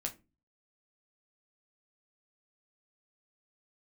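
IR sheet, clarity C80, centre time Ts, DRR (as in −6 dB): 24.0 dB, 9 ms, 2.0 dB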